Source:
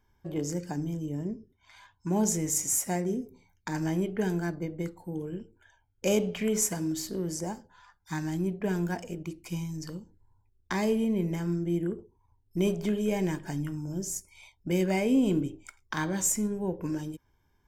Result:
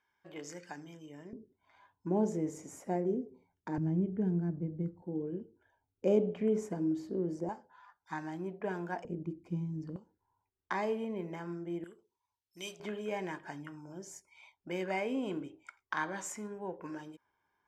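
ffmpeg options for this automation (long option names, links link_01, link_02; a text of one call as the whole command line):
ffmpeg -i in.wav -af "asetnsamples=nb_out_samples=441:pad=0,asendcmd='1.33 bandpass f 430;3.78 bandpass f 150;5.02 bandpass f 360;7.49 bandpass f 900;9.05 bandpass f 250;9.96 bandpass f 1000;11.84 bandpass f 4300;12.8 bandpass f 1200',bandpass=frequency=1900:width_type=q:width=0.9:csg=0" out.wav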